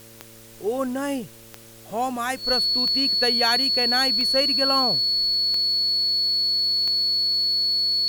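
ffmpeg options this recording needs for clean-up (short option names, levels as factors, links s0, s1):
-af "adeclick=t=4,bandreject=f=113.3:t=h:w=4,bandreject=f=226.6:t=h:w=4,bandreject=f=339.9:t=h:w=4,bandreject=f=453.2:t=h:w=4,bandreject=f=566.5:t=h:w=4,bandreject=f=4400:w=30,afwtdn=0.004"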